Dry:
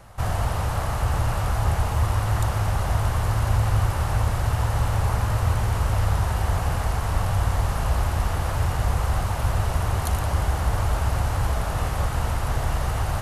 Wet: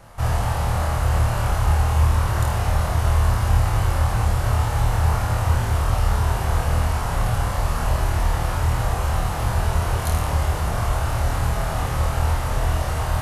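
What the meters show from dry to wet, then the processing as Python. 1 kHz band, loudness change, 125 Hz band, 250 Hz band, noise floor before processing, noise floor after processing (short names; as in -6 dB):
+2.5 dB, +2.5 dB, +2.0 dB, +2.0 dB, -27 dBFS, -25 dBFS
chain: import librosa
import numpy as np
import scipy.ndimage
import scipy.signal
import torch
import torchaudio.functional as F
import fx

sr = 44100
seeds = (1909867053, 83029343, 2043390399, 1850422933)

y = fx.room_flutter(x, sr, wall_m=4.4, rt60_s=0.44)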